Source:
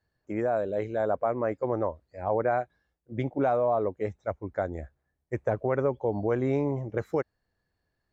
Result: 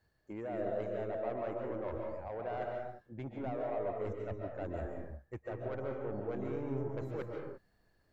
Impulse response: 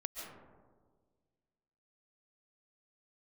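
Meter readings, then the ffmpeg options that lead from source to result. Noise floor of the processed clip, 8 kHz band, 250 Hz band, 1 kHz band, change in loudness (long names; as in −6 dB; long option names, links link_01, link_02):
−73 dBFS, can't be measured, −9.5 dB, −11.5 dB, −10.5 dB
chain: -filter_complex "[0:a]areverse,acompressor=threshold=-39dB:ratio=12,areverse,asoftclip=type=tanh:threshold=-37.5dB[link_01];[1:a]atrim=start_sample=2205,afade=type=out:start_time=0.41:duration=0.01,atrim=end_sample=18522[link_02];[link_01][link_02]afir=irnorm=-1:irlink=0,volume=7dB"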